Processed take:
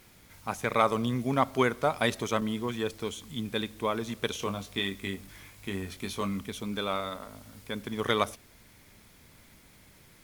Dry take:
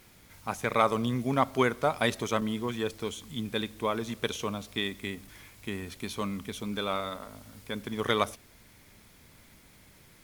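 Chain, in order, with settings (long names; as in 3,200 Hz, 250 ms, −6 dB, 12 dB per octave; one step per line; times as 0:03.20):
0:04.40–0:06.41: double-tracking delay 21 ms −7 dB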